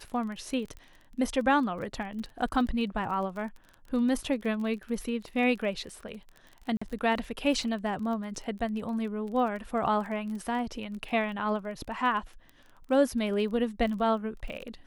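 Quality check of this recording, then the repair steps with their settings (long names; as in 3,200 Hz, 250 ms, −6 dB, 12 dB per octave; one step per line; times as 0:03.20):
surface crackle 22 per second −37 dBFS
0:06.77–0:06.82: drop-out 45 ms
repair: click removal
repair the gap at 0:06.77, 45 ms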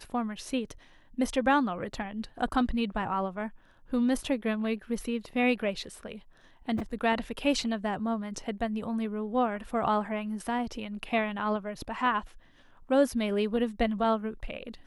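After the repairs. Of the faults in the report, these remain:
none of them is left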